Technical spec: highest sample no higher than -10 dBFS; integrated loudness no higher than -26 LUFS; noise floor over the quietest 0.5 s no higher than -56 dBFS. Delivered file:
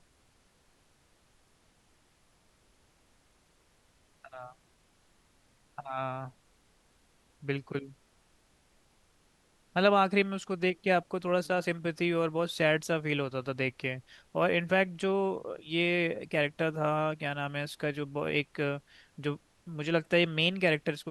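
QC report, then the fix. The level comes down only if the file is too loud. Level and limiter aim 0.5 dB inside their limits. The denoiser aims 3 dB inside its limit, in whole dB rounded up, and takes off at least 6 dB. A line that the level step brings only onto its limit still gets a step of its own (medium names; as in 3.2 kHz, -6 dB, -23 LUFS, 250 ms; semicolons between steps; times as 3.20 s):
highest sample -11.5 dBFS: pass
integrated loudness -30.5 LUFS: pass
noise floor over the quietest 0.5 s -67 dBFS: pass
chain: none needed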